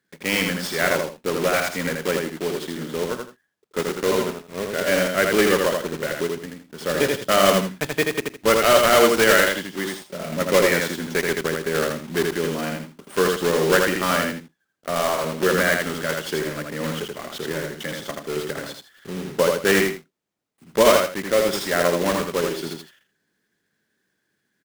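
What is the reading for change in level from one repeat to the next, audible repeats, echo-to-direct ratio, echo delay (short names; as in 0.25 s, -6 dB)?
-12.0 dB, 2, -3.0 dB, 81 ms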